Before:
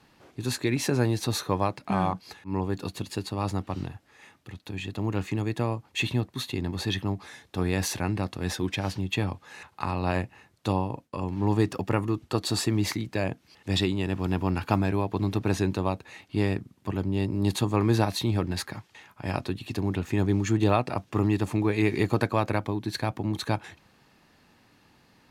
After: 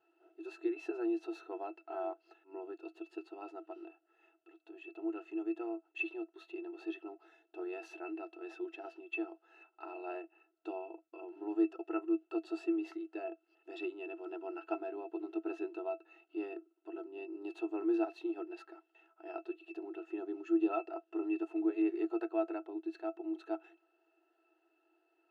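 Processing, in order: brick-wall FIR high-pass 300 Hz; pitch-class resonator E, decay 0.1 s

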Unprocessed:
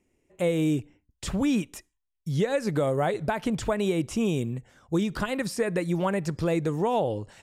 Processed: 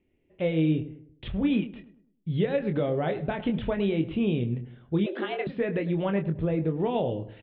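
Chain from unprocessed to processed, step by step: doubling 25 ms -7 dB; filtered feedback delay 103 ms, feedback 40%, low-pass 1.4 kHz, level -13 dB; 5.06–5.47 s: frequency shift +180 Hz; 6.23–6.80 s: treble shelf 2.1 kHz -12 dB; steep low-pass 3.6 kHz 72 dB/octave; peaking EQ 1.1 kHz -8 dB 1.4 oct; 1.28–1.74 s: three bands expanded up and down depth 70%

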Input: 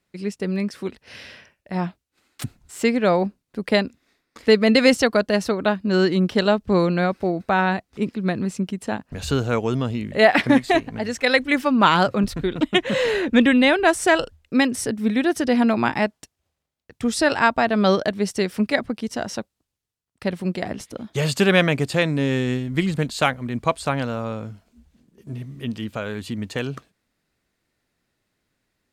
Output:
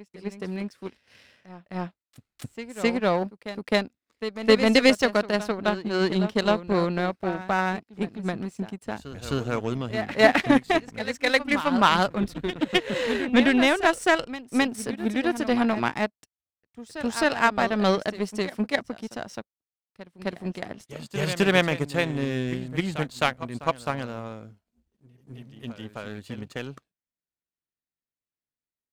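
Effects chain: reverse echo 261 ms -9.5 dB; power-law waveshaper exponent 1.4

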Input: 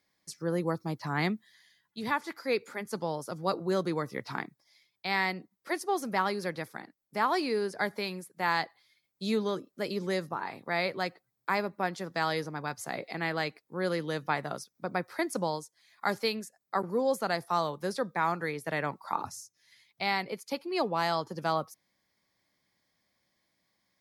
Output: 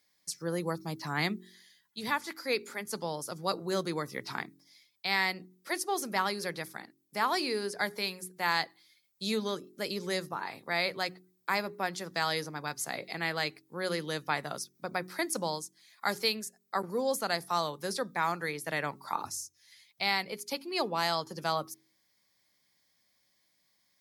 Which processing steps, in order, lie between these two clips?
treble shelf 2.7 kHz +10.5 dB; de-hum 45.84 Hz, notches 9; trim -3 dB

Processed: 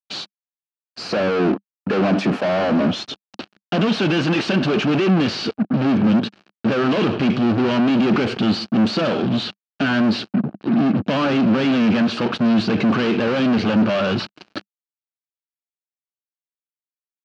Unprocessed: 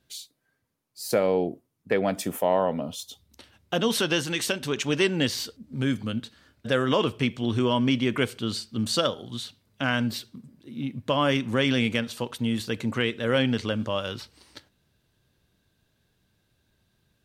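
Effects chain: spectral gate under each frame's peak -30 dB strong; fuzz box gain 46 dB, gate -50 dBFS; cabinet simulation 150–3800 Hz, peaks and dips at 200 Hz +7 dB, 320 Hz +3 dB, 500 Hz -4 dB, 970 Hz -5 dB, 2 kHz -8 dB, 3.5 kHz -8 dB; trim -3 dB

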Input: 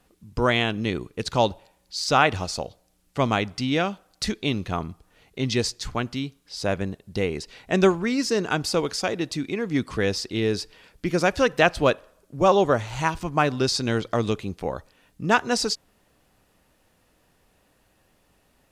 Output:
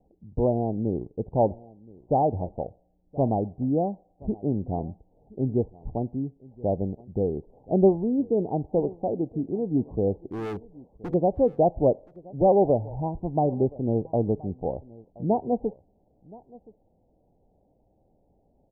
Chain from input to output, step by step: steep low-pass 830 Hz 72 dB/octave; 10.27–11.14 s: hard clipper -30 dBFS, distortion -18 dB; delay 1023 ms -22.5 dB

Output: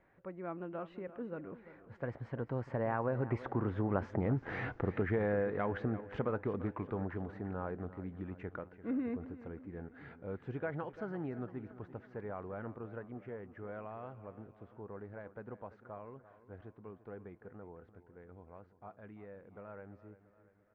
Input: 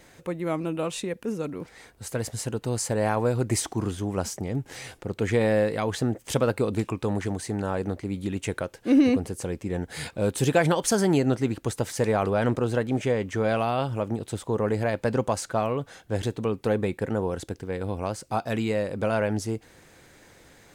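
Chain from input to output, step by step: Doppler pass-by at 4.35 s, 19 m/s, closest 7.5 m; compression 3:1, threshold -38 dBFS, peak gain reduction 10.5 dB; four-pole ladder low-pass 2 kHz, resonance 30%; on a send: feedback delay 342 ms, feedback 54%, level -15 dB; on the sum: trim +12.5 dB

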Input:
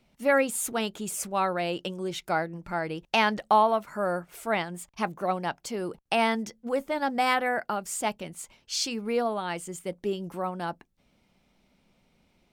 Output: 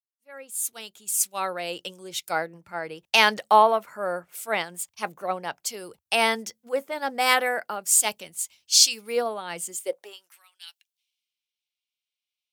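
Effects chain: fade-in on the opening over 1.79 s; tilt EQ +3.5 dB/octave; high-pass sweep 81 Hz -> 2.9 kHz, 9.38–10.47 s; dynamic bell 480 Hz, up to +6 dB, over -45 dBFS, Q 2.2; three bands expanded up and down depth 70%; trim -1 dB

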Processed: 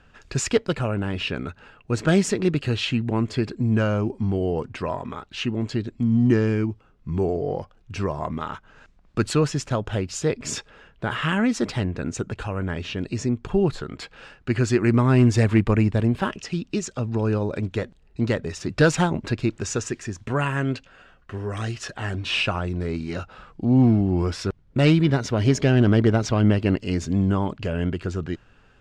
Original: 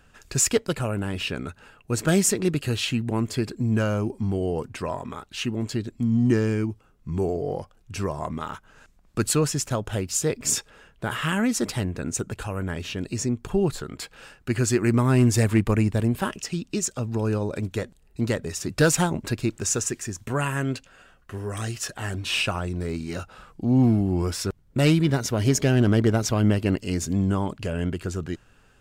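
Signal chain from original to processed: low-pass 4.4 kHz 12 dB/octave; trim +2 dB

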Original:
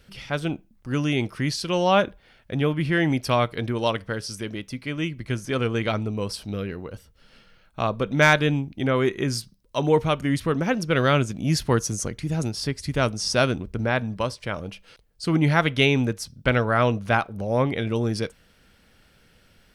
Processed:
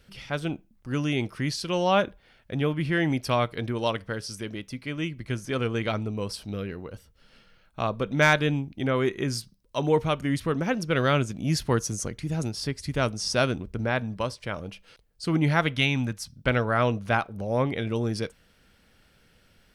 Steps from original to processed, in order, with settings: 15.76–16.37 s: peaking EQ 430 Hz -13 dB 0.61 oct; trim -3 dB

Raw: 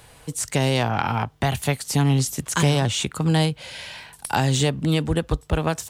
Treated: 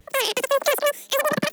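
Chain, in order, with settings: wide varispeed 3.87×; vibrato 2 Hz 97 cents; three bands expanded up and down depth 40%

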